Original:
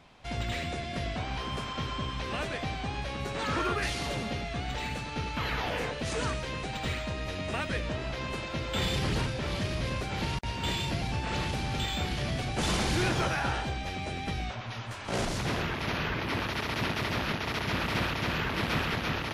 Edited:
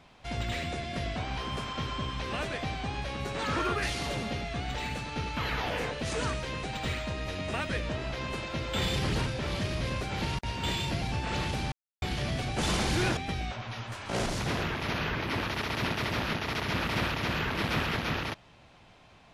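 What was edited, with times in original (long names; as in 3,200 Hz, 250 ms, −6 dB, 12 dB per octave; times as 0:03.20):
0:11.72–0:12.02: silence
0:13.17–0:14.16: remove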